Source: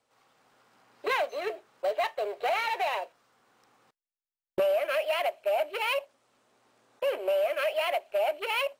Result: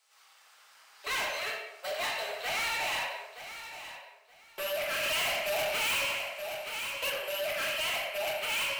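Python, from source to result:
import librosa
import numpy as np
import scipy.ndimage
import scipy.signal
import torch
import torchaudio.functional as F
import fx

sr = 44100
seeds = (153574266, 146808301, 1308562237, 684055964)

p1 = scipy.signal.sosfilt(scipy.signal.butter(2, 1100.0, 'highpass', fs=sr, output='sos'), x)
p2 = fx.high_shelf(p1, sr, hz=2200.0, db=9.5)
p3 = fx.room_shoebox(p2, sr, seeds[0], volume_m3=270.0, walls='mixed', distance_m=1.5)
p4 = 10.0 ** (-29.5 / 20.0) * np.tanh(p3 / 10.0 ** (-29.5 / 20.0))
p5 = p4 + fx.echo_feedback(p4, sr, ms=923, feedback_pct=20, wet_db=-12.0, dry=0)
y = fx.leveller(p5, sr, passes=2, at=(5.03, 7.1))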